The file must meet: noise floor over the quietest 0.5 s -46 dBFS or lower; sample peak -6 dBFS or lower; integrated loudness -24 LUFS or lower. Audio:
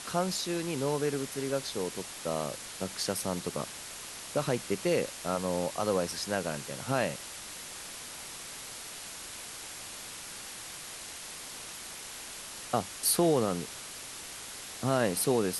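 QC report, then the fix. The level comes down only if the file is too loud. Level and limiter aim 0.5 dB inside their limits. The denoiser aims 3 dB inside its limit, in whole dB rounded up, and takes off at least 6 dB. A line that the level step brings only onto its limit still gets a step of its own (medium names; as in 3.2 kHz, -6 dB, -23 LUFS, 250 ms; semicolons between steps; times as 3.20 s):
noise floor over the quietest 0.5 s -43 dBFS: fail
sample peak -12.5 dBFS: pass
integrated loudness -33.5 LUFS: pass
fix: noise reduction 6 dB, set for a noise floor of -43 dBFS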